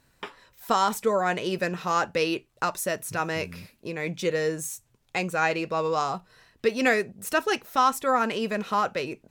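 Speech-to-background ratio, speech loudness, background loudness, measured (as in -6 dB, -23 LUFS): 16.0 dB, -26.5 LUFS, -42.5 LUFS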